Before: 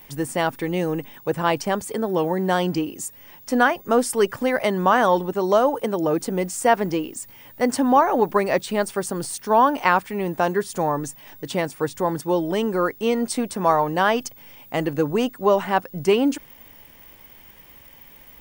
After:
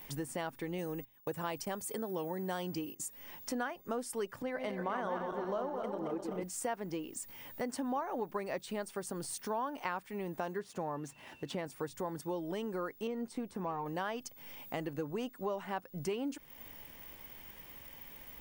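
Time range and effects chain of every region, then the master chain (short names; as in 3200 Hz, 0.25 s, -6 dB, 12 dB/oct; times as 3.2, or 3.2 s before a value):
0.78–3 gate -37 dBFS, range -21 dB + high shelf 7500 Hz +10.5 dB
4.42–6.43 regenerating reverse delay 0.128 s, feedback 68%, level -5 dB + high shelf 4900 Hz -12 dB + three-band expander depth 40%
10.59–11.66 median filter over 3 samples + HPF 52 Hz + high shelf 5000 Hz -7.5 dB
13.07–13.86 de-esser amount 100% + notch 610 Hz, Q 6.5
whole clip: notches 60/120 Hz; compressor 3:1, threshold -35 dBFS; gain -4 dB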